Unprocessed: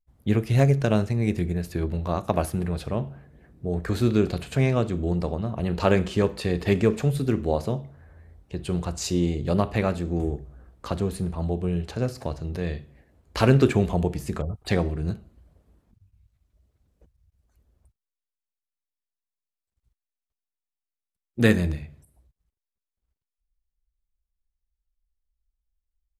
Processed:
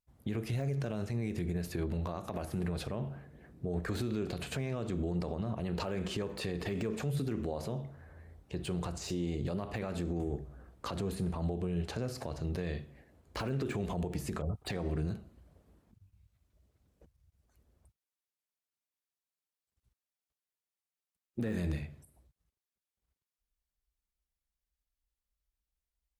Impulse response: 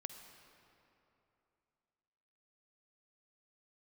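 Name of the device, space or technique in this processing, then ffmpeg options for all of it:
podcast mastering chain: -af "highpass=f=89:p=1,deesser=0.9,acompressor=threshold=-25dB:ratio=2.5,alimiter=level_in=1dB:limit=-24dB:level=0:latency=1:release=65,volume=-1dB" -ar 44100 -c:a libmp3lame -b:a 96k

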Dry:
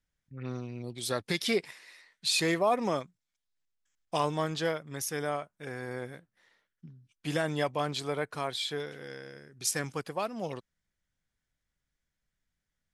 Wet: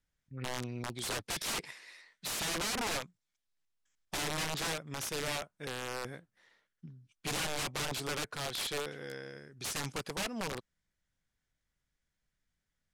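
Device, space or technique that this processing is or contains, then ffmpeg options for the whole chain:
overflowing digital effects unit: -af "aeval=exprs='(mod(28.2*val(0)+1,2)-1)/28.2':c=same,lowpass=11k"

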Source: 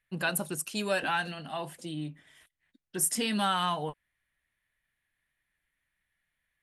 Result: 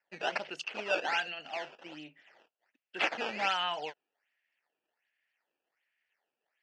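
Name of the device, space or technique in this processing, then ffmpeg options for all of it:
circuit-bent sampling toy: -af "acrusher=samples=12:mix=1:aa=0.000001:lfo=1:lforange=19.2:lforate=1.3,highpass=560,equalizer=f=1.1k:t=q:w=4:g=-9,equalizer=f=2.7k:t=q:w=4:g=8,equalizer=f=3.8k:t=q:w=4:g=-9,lowpass=f=4.7k:w=0.5412,lowpass=f=4.7k:w=1.3066"

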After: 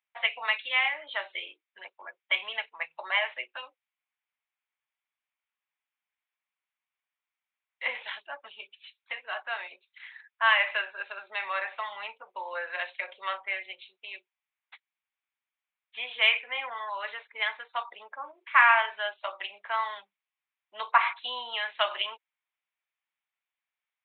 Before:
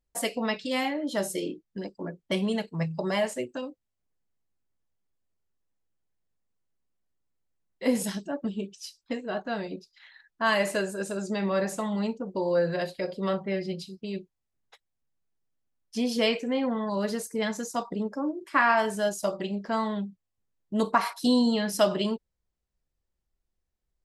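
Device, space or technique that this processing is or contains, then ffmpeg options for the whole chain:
musical greeting card: -af "aresample=8000,aresample=44100,highpass=f=890:w=0.5412,highpass=f=890:w=1.3066,equalizer=f=2.3k:t=o:w=0.43:g=8.5,volume=3dB"

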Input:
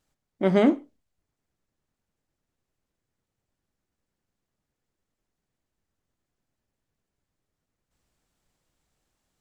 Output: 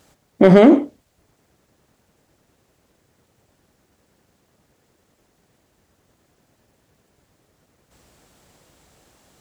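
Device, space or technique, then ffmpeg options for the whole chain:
mastering chain: -af "highpass=55,equalizer=f=520:t=o:w=1.6:g=4,acompressor=threshold=-18dB:ratio=3,asoftclip=type=hard:threshold=-13.5dB,alimiter=level_in=21.5dB:limit=-1dB:release=50:level=0:latency=1,volume=-1dB"

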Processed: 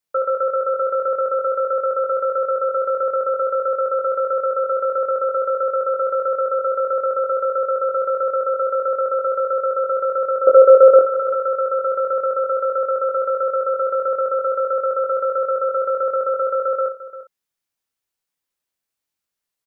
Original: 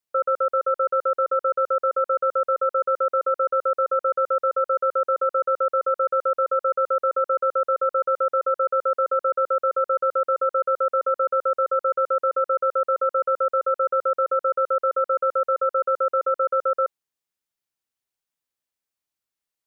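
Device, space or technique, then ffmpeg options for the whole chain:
slapback doubling: -filter_complex "[0:a]asettb=1/sr,asplit=3[a][b][c];[a]atrim=end=10.474[d];[b]atrim=start=10.47:end=10.99,asetpts=PTS-STARTPTS,afade=t=in:d=0.004:c=qsin,afade=t=out:st=0.516:d=0.004:c=qsin,equalizer=f=410:t=o:w=2.3:g=15[e];[c]atrim=start=10.986[f];[d][e]acrossfade=d=0.004:c1=hsin:c2=qsin[g];[g][f]acrossfade=d=0.004:c1=qsin:c2=hsin,aecho=1:1:347:0.178,asplit=3[h][i][j];[i]adelay=23,volume=-4dB[k];[j]adelay=61,volume=-12dB[l];[h][k][l]amix=inputs=3:normalize=0,volume=2dB"

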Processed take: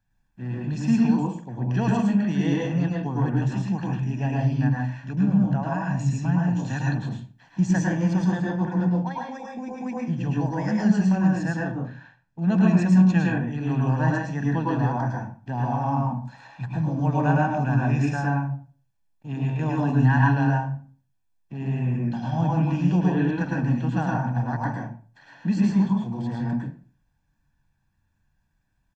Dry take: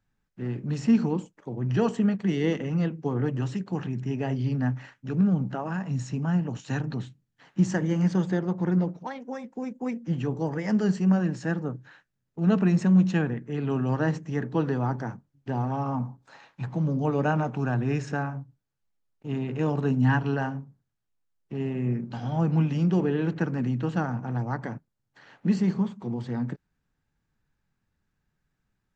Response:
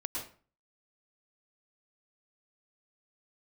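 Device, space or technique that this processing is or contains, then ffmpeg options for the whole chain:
microphone above a desk: -filter_complex "[0:a]aecho=1:1:1.2:0.61[a];[1:a]atrim=start_sample=2205[b];[a][b]afir=irnorm=-1:irlink=0,asettb=1/sr,asplit=3[c][d][e];[c]atrim=end=11.724[f];[d]atrim=start=11.72:end=12.49,asetpts=PTS-STARTPTS,afade=t=in:d=0.004:c=qsin,afade=t=out:st=0.766:d=0.004:c=qsin,lowpass=6.2k[g];[e]atrim=start=12.486[h];[f][g]acrossfade=d=0.004:c1=hsin:c2=qsin[i];[i][h]acrossfade=d=0.004:c1=qsin:c2=hsin"

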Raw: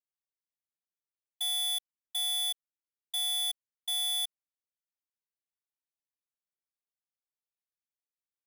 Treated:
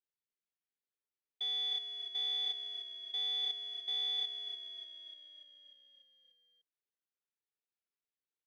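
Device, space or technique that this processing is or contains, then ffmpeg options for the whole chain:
frequency-shifting delay pedal into a guitar cabinet: -filter_complex "[0:a]asplit=9[a][b][c][d][e][f][g][h][i];[b]adelay=295,afreqshift=-32,volume=-8dB[j];[c]adelay=590,afreqshift=-64,volume=-12.3dB[k];[d]adelay=885,afreqshift=-96,volume=-16.6dB[l];[e]adelay=1180,afreqshift=-128,volume=-20.9dB[m];[f]adelay=1475,afreqshift=-160,volume=-25.2dB[n];[g]adelay=1770,afreqshift=-192,volume=-29.5dB[o];[h]adelay=2065,afreqshift=-224,volume=-33.8dB[p];[i]adelay=2360,afreqshift=-256,volume=-38.1dB[q];[a][j][k][l][m][n][o][p][q]amix=inputs=9:normalize=0,highpass=95,equalizer=f=160:t=q:w=4:g=-4,equalizer=f=420:t=q:w=4:g=7,equalizer=f=650:t=q:w=4:g=-8,equalizer=f=1.1k:t=q:w=4:g=-6,lowpass=f=4.1k:w=0.5412,lowpass=f=4.1k:w=1.3066,volume=-3dB"

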